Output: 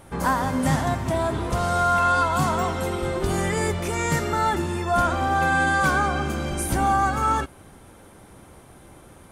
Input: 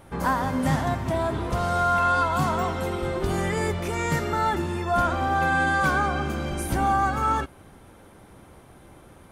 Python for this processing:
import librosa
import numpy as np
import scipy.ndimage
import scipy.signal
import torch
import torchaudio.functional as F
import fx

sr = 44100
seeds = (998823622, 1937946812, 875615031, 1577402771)

y = fx.peak_eq(x, sr, hz=8400.0, db=5.5, octaves=1.2)
y = F.gain(torch.from_numpy(y), 1.5).numpy()